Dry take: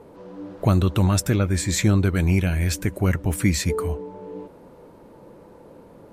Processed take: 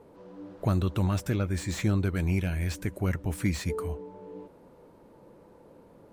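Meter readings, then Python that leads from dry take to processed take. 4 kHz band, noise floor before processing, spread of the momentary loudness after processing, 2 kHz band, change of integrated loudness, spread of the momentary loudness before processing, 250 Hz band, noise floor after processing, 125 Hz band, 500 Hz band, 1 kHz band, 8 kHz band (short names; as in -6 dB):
-10.5 dB, -48 dBFS, 18 LU, -8.0 dB, -8.0 dB, 18 LU, -7.5 dB, -55 dBFS, -7.5 dB, -7.5 dB, -7.5 dB, -13.5 dB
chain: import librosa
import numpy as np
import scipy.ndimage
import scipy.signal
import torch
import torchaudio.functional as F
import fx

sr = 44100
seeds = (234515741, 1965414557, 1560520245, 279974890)

y = fx.slew_limit(x, sr, full_power_hz=190.0)
y = F.gain(torch.from_numpy(y), -7.5).numpy()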